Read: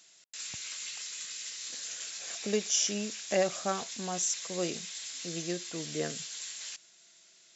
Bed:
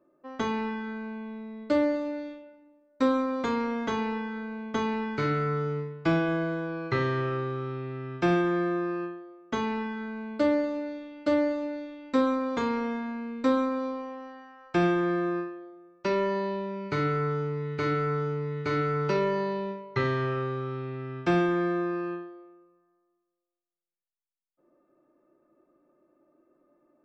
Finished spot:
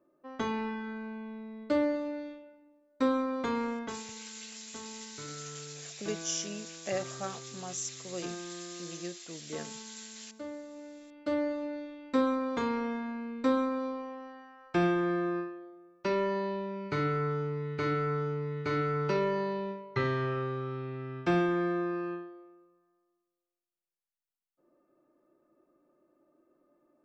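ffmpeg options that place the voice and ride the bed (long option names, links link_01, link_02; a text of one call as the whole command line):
ffmpeg -i stem1.wav -i stem2.wav -filter_complex "[0:a]adelay=3550,volume=-6dB[link_01];[1:a]volume=11dB,afade=type=out:start_time=3.68:duration=0.35:silence=0.199526,afade=type=in:start_time=10.64:duration=1.15:silence=0.188365[link_02];[link_01][link_02]amix=inputs=2:normalize=0" out.wav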